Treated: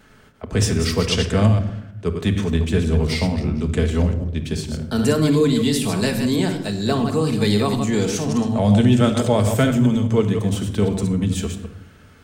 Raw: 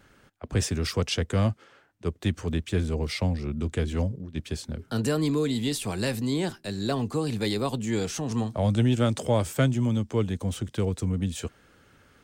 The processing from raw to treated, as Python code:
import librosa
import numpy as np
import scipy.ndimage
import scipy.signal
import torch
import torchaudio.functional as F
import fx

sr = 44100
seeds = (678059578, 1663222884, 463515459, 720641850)

y = fx.reverse_delay(x, sr, ms=106, wet_db=-6.5)
y = fx.room_shoebox(y, sr, seeds[0], volume_m3=2200.0, walls='furnished', distance_m=1.5)
y = y * librosa.db_to_amplitude(5.5)